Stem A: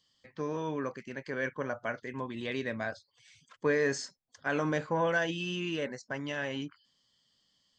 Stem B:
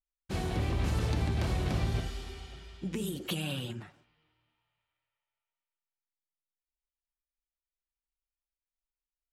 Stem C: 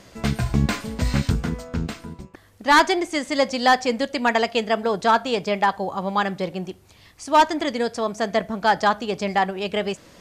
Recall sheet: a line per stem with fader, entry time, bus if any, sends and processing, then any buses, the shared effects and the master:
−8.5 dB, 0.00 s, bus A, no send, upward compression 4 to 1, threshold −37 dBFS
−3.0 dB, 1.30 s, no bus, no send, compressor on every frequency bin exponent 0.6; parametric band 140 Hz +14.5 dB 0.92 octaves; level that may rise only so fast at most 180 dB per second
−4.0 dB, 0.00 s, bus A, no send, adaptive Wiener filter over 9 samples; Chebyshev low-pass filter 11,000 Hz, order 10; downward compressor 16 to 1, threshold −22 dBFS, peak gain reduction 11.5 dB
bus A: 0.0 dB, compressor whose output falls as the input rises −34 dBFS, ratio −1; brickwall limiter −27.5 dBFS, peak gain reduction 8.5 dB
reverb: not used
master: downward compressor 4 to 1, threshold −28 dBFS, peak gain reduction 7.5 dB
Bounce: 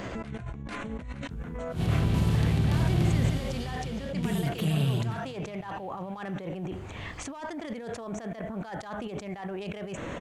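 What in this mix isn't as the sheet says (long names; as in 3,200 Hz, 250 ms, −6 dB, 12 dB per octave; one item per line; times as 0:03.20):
stem A −8.5 dB → −17.5 dB
stem C −4.0 dB → +6.0 dB
master: missing downward compressor 4 to 1, threshold −28 dBFS, peak gain reduction 7.5 dB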